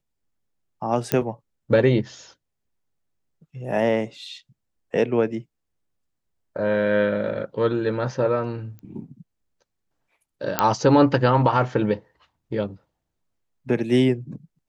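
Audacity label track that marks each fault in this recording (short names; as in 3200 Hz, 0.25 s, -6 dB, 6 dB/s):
1.120000	1.120000	pop -5 dBFS
8.790000	8.790000	pop -29 dBFS
10.590000	10.590000	pop -2 dBFS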